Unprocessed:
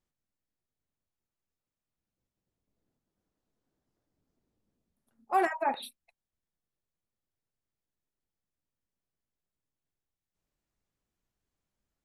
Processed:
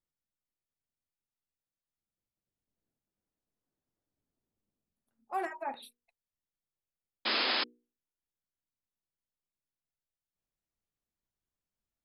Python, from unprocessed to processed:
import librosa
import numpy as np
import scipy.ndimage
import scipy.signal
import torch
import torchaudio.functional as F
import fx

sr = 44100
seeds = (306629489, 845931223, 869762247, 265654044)

y = fx.spec_paint(x, sr, seeds[0], shape='noise', start_s=7.25, length_s=0.39, low_hz=210.0, high_hz=5200.0, level_db=-22.0)
y = fx.hum_notches(y, sr, base_hz=60, count=8)
y = F.gain(torch.from_numpy(y), -8.0).numpy()